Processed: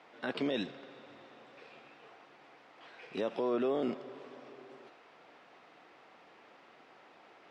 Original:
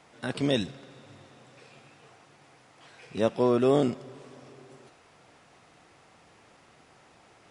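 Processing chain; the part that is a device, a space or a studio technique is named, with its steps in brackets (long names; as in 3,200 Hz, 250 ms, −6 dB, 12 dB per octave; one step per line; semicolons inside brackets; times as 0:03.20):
DJ mixer with the lows and highs turned down (three-way crossover with the lows and the highs turned down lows −22 dB, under 220 Hz, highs −24 dB, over 4,400 Hz; brickwall limiter −24 dBFS, peak gain reduction 10.5 dB)
0:03.13–0:03.54: high-shelf EQ 7,200 Hz +9.5 dB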